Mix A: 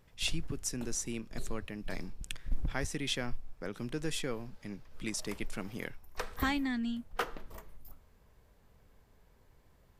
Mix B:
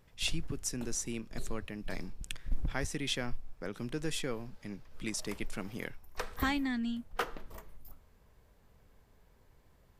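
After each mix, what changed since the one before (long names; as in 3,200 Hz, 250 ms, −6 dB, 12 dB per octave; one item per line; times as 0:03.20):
nothing changed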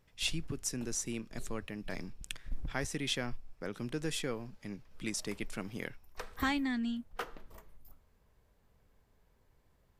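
background −5.5 dB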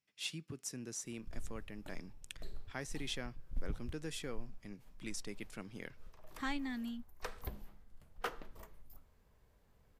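speech −7.0 dB
background: entry +1.05 s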